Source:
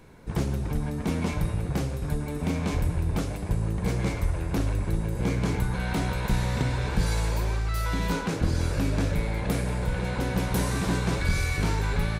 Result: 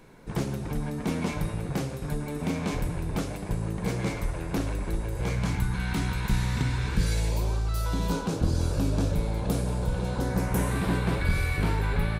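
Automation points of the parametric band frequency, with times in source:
parametric band −11.5 dB 0.82 octaves
0:04.65 70 Hz
0:05.67 570 Hz
0:06.86 570 Hz
0:07.51 2,000 Hz
0:10.12 2,000 Hz
0:10.81 6,200 Hz

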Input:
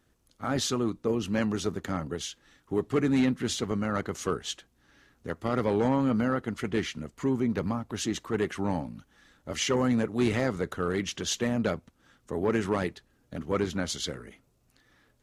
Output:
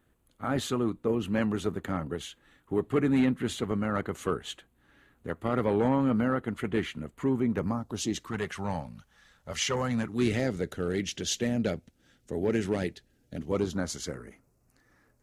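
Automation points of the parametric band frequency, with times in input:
parametric band −14 dB 0.67 octaves
0:07.48 5,400 Hz
0:08.13 1,300 Hz
0:08.40 300 Hz
0:09.89 300 Hz
0:10.35 1,100 Hz
0:13.37 1,100 Hz
0:13.93 3,400 Hz

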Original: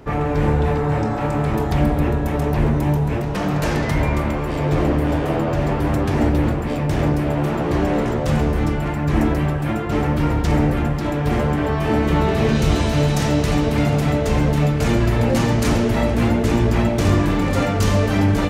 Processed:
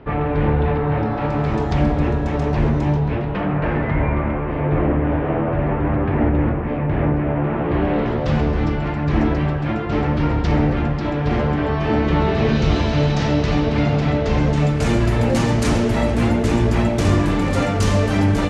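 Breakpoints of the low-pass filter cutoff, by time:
low-pass filter 24 dB per octave
0:00.97 3,500 Hz
0:01.56 6,300 Hz
0:02.83 6,300 Hz
0:03.55 2,400 Hz
0:07.49 2,400 Hz
0:08.33 5,200 Hz
0:14.29 5,200 Hz
0:14.88 11,000 Hz

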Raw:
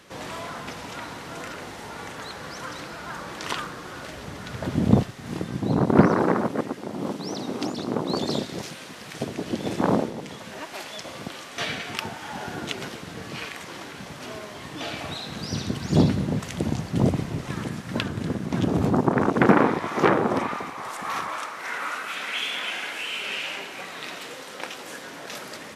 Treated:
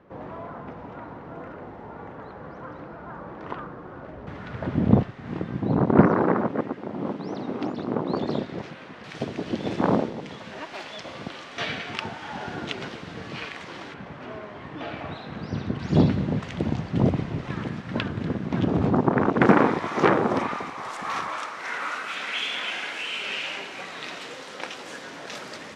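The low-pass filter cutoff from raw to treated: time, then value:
1,000 Hz
from 0:04.27 2,200 Hz
from 0:09.04 4,200 Hz
from 0:13.94 2,000 Hz
from 0:15.79 3,400 Hz
from 0:19.41 6,700 Hz

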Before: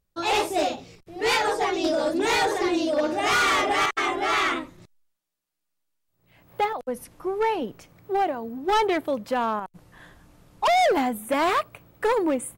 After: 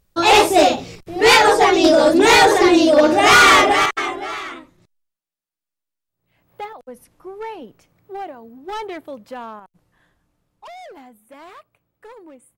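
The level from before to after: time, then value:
0:03.56 +11.5 dB
0:04.15 0 dB
0:04.43 −7 dB
0:09.32 −7 dB
0:10.82 −19 dB

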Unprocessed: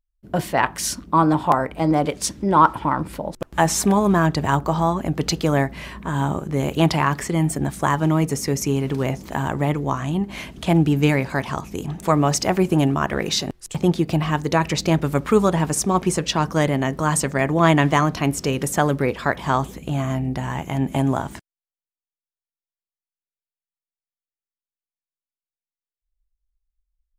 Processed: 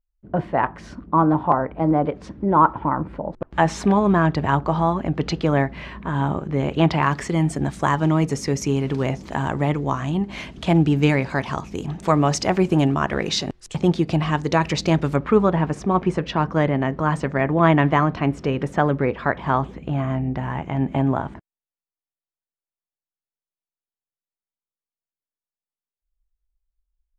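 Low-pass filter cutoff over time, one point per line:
1,400 Hz
from 0:03.51 3,300 Hz
from 0:07.02 6,000 Hz
from 0:15.16 2,300 Hz
from 0:21.34 1,100 Hz

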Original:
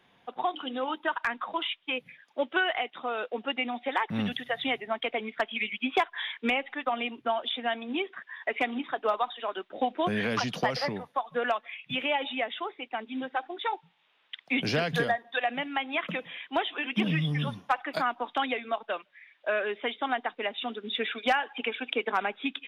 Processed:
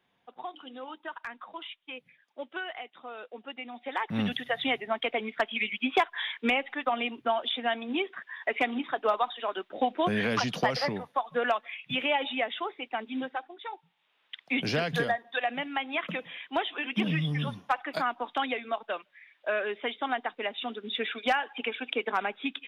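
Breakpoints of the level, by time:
0:03.67 −10 dB
0:04.19 +1 dB
0:13.23 +1 dB
0:13.56 −10 dB
0:14.38 −1 dB

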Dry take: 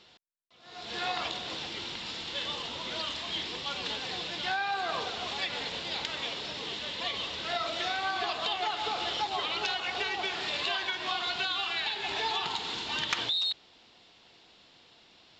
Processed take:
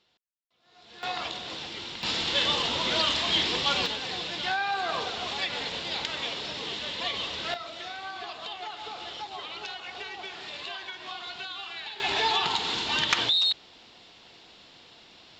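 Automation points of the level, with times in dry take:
−12 dB
from 0:01.03 0 dB
from 0:02.03 +9.5 dB
from 0:03.86 +2.5 dB
from 0:07.54 −6.5 dB
from 0:12.00 +6 dB

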